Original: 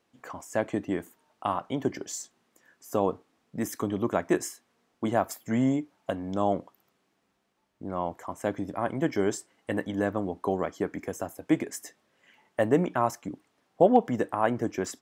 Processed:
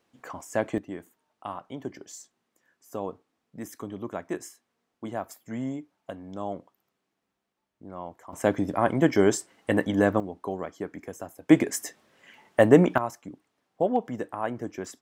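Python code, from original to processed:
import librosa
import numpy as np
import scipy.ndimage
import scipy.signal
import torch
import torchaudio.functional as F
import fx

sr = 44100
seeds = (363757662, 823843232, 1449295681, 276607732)

y = fx.gain(x, sr, db=fx.steps((0.0, 1.0), (0.78, -7.5), (8.33, 6.0), (10.2, -4.5), (11.49, 7.0), (12.98, -5.0)))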